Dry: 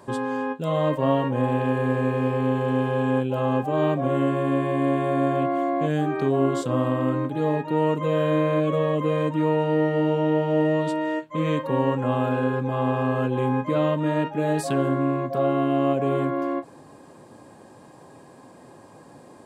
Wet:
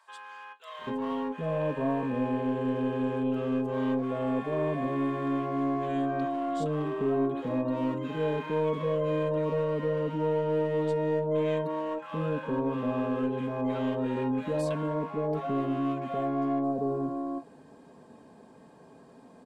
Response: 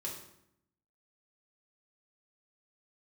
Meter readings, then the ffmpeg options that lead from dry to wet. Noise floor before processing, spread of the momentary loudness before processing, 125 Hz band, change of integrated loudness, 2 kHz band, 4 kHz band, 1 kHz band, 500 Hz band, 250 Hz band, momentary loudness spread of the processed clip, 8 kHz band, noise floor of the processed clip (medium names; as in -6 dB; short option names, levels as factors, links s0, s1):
-48 dBFS, 3 LU, -9.0 dB, -6.5 dB, -8.5 dB, -8.0 dB, -7.5 dB, -6.0 dB, -6.0 dB, 4 LU, no reading, -54 dBFS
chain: -filter_complex "[0:a]lowpass=f=3200:p=1,aecho=1:1:4.5:0.56,asplit=2[s0][s1];[s1]asoftclip=type=hard:threshold=0.0631,volume=0.355[s2];[s0][s2]amix=inputs=2:normalize=0,aeval=exprs='0.422*(cos(1*acos(clip(val(0)/0.422,-1,1)))-cos(1*PI/2))+0.00668*(cos(4*acos(clip(val(0)/0.422,-1,1)))-cos(4*PI/2))':c=same,acrossover=split=1000[s3][s4];[s3]adelay=790[s5];[s5][s4]amix=inputs=2:normalize=0,volume=0.398"